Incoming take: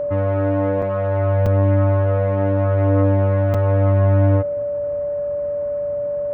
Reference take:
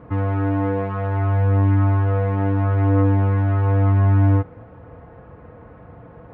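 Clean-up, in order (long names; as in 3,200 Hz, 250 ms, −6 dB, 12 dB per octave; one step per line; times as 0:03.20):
notch filter 580 Hz, Q 30
repair the gap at 0:00.82/0:01.46/0:03.54, 4.9 ms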